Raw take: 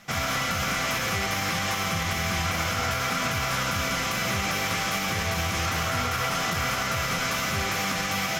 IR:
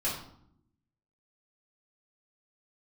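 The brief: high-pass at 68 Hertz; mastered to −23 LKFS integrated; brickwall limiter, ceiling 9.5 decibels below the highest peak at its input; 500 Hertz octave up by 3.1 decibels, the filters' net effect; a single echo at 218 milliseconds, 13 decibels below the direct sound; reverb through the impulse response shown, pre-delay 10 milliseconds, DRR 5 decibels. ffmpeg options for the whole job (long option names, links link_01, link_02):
-filter_complex "[0:a]highpass=68,equalizer=frequency=500:width_type=o:gain=4,alimiter=limit=-24dB:level=0:latency=1,aecho=1:1:218:0.224,asplit=2[link_01][link_02];[1:a]atrim=start_sample=2205,adelay=10[link_03];[link_02][link_03]afir=irnorm=-1:irlink=0,volume=-11.5dB[link_04];[link_01][link_04]amix=inputs=2:normalize=0,volume=7.5dB"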